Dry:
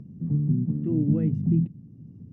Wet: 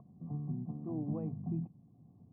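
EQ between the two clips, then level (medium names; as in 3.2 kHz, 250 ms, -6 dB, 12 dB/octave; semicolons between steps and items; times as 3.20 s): cascade formant filter a; +12.5 dB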